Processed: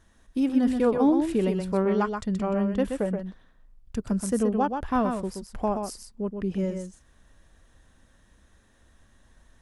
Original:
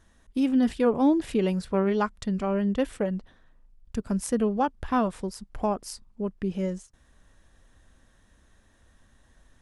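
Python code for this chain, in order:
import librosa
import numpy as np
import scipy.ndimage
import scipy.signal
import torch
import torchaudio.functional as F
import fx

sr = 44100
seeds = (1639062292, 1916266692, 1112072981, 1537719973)

p1 = fx.dynamic_eq(x, sr, hz=3400.0, q=0.72, threshold_db=-47.0, ratio=4.0, max_db=-4)
y = p1 + fx.echo_single(p1, sr, ms=126, db=-6.0, dry=0)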